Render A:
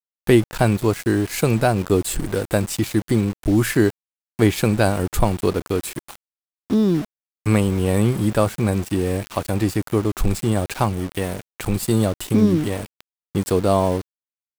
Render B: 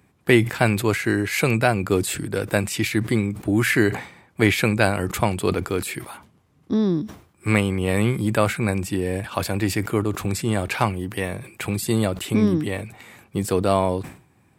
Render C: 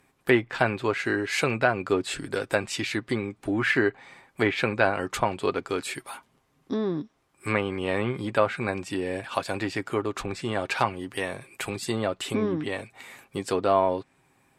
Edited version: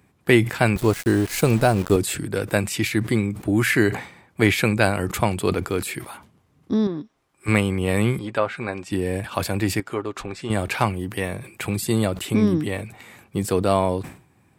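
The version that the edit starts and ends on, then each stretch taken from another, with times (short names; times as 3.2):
B
0.76–1.96 from A
6.87–7.48 from C
8.19–8.92 from C
9.8–10.5 from C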